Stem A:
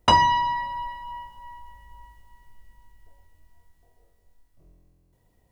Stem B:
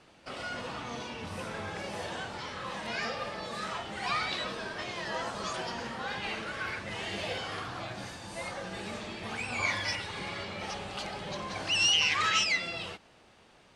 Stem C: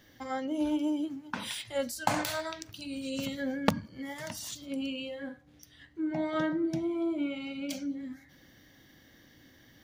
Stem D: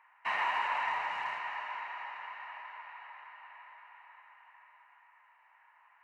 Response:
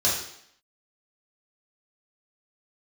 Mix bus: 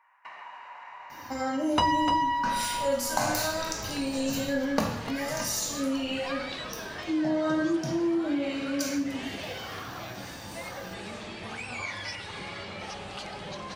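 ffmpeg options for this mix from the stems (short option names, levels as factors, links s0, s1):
-filter_complex "[0:a]adelay=1700,volume=1.26,asplit=2[s0][s1];[s1]volume=0.473[s2];[1:a]acompressor=threshold=0.0112:ratio=2,adelay=2200,volume=1.26[s3];[2:a]highshelf=f=6400:g=6.5,bandreject=f=3400:w=7.5,adelay=1100,volume=1.12,asplit=3[s4][s5][s6];[s5]volume=0.473[s7];[s6]volume=0.178[s8];[3:a]acompressor=threshold=0.00794:ratio=12,volume=0.668,asplit=2[s9][s10];[s10]volume=0.266[s11];[4:a]atrim=start_sample=2205[s12];[s7][s11]amix=inputs=2:normalize=0[s13];[s13][s12]afir=irnorm=-1:irlink=0[s14];[s2][s8]amix=inputs=2:normalize=0,aecho=0:1:298:1[s15];[s0][s3][s4][s9][s14][s15]amix=inputs=6:normalize=0,acompressor=threshold=0.0355:ratio=2"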